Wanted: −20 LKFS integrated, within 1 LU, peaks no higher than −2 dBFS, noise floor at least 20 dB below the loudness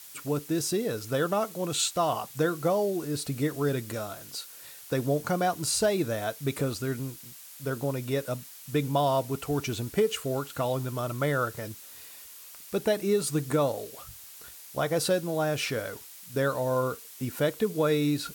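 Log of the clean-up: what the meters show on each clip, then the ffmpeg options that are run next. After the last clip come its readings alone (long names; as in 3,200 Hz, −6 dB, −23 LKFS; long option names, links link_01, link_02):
background noise floor −47 dBFS; target noise floor −49 dBFS; integrated loudness −29.0 LKFS; sample peak −13.5 dBFS; target loudness −20.0 LKFS
→ -af "afftdn=noise_reduction=6:noise_floor=-47"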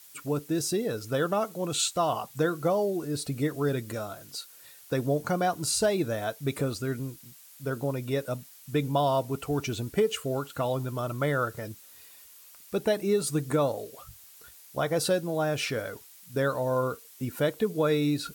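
background noise floor −52 dBFS; integrated loudness −29.0 LKFS; sample peak −13.5 dBFS; target loudness −20.0 LKFS
→ -af "volume=9dB"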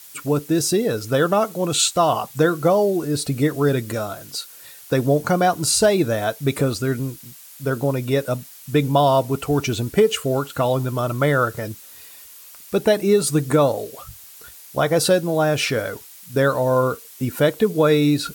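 integrated loudness −20.0 LKFS; sample peak −4.5 dBFS; background noise floor −43 dBFS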